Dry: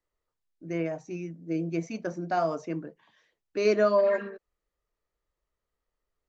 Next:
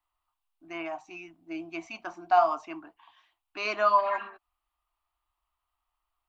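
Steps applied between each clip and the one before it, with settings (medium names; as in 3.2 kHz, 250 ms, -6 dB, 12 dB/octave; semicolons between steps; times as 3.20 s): FFT filter 100 Hz 0 dB, 150 Hz -24 dB, 320 Hz -4 dB, 500 Hz -23 dB, 710 Hz +9 dB, 1.1 kHz +13 dB, 1.8 kHz -1 dB, 2.8 kHz +10 dB, 6.2 kHz -5 dB, 9.2 kHz +5 dB; trim -2 dB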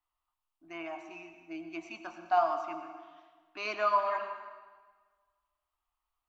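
reverberation RT60 1.5 s, pre-delay 78 ms, DRR 7.5 dB; trim -5 dB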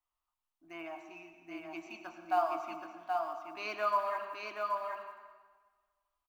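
block-companded coder 7-bit; delay 776 ms -4 dB; trim -3.5 dB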